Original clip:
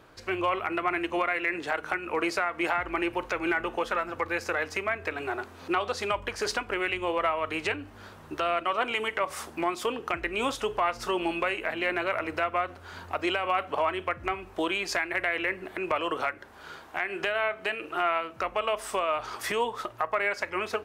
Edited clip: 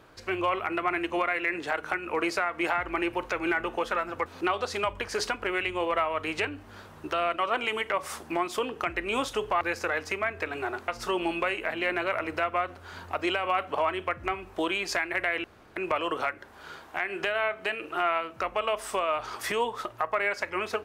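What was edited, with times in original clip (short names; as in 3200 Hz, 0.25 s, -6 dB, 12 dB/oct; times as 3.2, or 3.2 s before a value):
4.26–5.53 move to 10.88
15.44–15.76 room tone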